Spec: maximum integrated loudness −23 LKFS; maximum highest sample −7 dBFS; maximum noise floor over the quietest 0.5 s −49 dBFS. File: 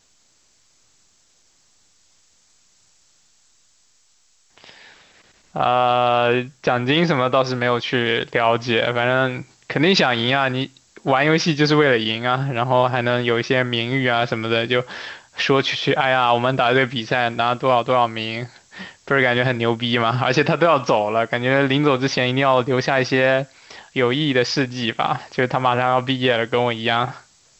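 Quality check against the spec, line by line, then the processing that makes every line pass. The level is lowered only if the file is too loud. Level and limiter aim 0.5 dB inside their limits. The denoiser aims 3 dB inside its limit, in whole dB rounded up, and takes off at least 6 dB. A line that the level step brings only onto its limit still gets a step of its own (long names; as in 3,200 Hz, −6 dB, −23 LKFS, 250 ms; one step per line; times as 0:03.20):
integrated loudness −19.0 LKFS: out of spec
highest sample −5.0 dBFS: out of spec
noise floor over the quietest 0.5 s −59 dBFS: in spec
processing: level −4.5 dB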